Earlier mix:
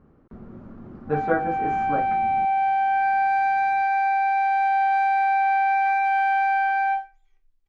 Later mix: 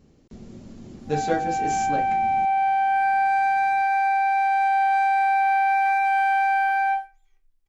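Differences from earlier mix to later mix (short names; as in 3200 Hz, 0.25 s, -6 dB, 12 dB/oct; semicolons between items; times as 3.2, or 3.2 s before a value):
speech: remove synth low-pass 1300 Hz, resonance Q 3.1; background: remove air absorption 88 m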